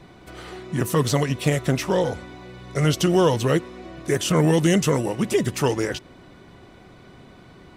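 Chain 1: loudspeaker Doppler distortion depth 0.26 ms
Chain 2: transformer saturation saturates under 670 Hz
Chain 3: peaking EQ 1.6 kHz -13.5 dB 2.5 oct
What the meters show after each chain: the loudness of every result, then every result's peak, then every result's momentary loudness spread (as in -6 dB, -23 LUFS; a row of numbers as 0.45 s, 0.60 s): -22.0 LUFS, -24.5 LUFS, -24.5 LUFS; -7.0 dBFS, -8.5 dBFS, -9.5 dBFS; 18 LU, 17 LU, 18 LU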